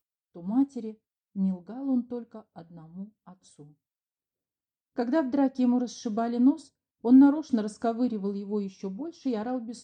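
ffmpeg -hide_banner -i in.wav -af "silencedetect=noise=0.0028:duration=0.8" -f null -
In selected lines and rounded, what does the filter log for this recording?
silence_start: 3.71
silence_end: 4.96 | silence_duration: 1.25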